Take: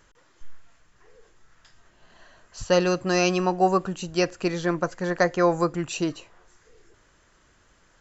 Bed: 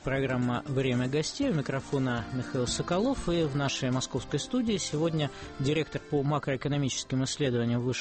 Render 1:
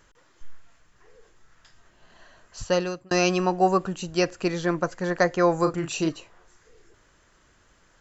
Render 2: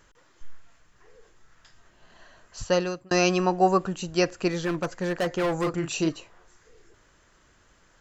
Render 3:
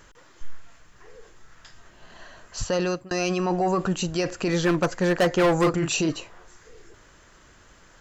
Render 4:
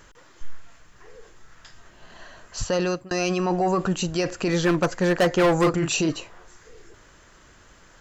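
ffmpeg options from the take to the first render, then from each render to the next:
-filter_complex "[0:a]asettb=1/sr,asplit=3[s0][s1][s2];[s0]atrim=end=5.594[s3];[s1]atrim=start=5.59:end=6.09,asetpts=PTS-STARTPTS,afade=t=in:d=0.004:c=qsin,afade=t=out:st=0.496:d=0.004:c=qsin,asplit=2[s4][s5];[s5]adelay=37,volume=0.447[s6];[s4][s6]amix=inputs=2:normalize=0,atrim=end_sample=22050[s7];[s2]atrim=start=6.086[s8];[s3][s7]acrossfade=d=0.004:c1=hsin:c2=qsin[s9];[s9][s8]acrossfade=d=0.004:c1=qsin:c2=hsin,asplit=2[s10][s11];[s10]atrim=end=3.11,asetpts=PTS-STARTPTS,afade=t=out:st=2.6:d=0.51[s12];[s11]atrim=start=3.11,asetpts=PTS-STARTPTS,afade=t=in:d=0.004:c=hsin[s13];[s12][s13]concat=n=2:v=0:a=1"
-filter_complex "[0:a]asettb=1/sr,asplit=3[s0][s1][s2];[s0]atrim=end=4.514[s3];[s1]atrim=start=4.51:end=5.74,asetpts=PTS-STARTPTS,afade=t=in:d=0.004:c=qsin,afade=t=out:st=1.226:d=0.004:c=qsin,asoftclip=type=hard:threshold=0.0794[s4];[s2]atrim=start=5.736[s5];[s3][s4]acrossfade=d=0.004:c1=hsin:c2=qsin[s6];[s6][s5]acrossfade=d=0.004:c1=qsin:c2=hsin"
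-af "acontrast=80,alimiter=limit=0.158:level=0:latency=1:release=14"
-af "volume=1.12"

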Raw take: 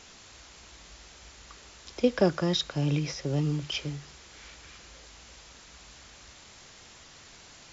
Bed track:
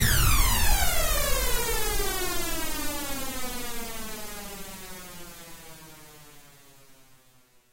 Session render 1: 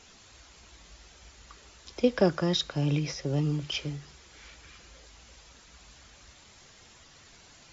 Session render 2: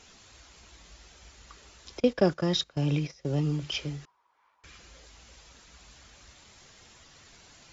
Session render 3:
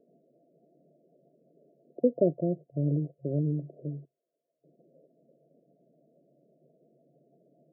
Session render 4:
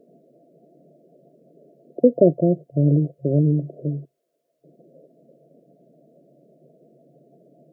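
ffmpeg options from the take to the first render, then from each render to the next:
-af "afftdn=nr=6:nf=-52"
-filter_complex "[0:a]asettb=1/sr,asplit=3[s0][s1][s2];[s0]atrim=end=2.004[s3];[s1]atrim=start=2:end=3.25,asetpts=PTS-STARTPTS,afade=t=in:d=0.004:c=qsin,afade=t=out:st=1.246:d=0.004:c=qsin,agate=range=0.141:threshold=0.02:ratio=16:release=100:detection=peak[s4];[s2]atrim=start=3.246[s5];[s3][s4]acrossfade=d=0.004:c1=hsin:c2=qsin[s6];[s6][s5]acrossfade=d=0.004:c1=qsin:c2=hsin,asettb=1/sr,asplit=3[s7][s8][s9];[s7]atrim=end=4.054[s10];[s8]atrim=start=4.05:end=4.64,asetpts=PTS-STARTPTS,afade=t=in:d=0.004:c=qsin,afade=t=out:st=0.586:d=0.004:c=qsin,bandpass=f=990:t=q:w=8[s11];[s9]atrim=start=4.636[s12];[s10][s11]acrossfade=d=0.004:c1=hsin:c2=qsin[s13];[s13][s12]acrossfade=d=0.004:c1=qsin:c2=hsin"
-af "afftfilt=real='re*between(b*sr/4096,130,700)':imag='im*between(b*sr/4096,130,700)':win_size=4096:overlap=0.75,equalizer=f=200:t=o:w=0.29:g=-6.5"
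-af "volume=3.35,alimiter=limit=0.708:level=0:latency=1"

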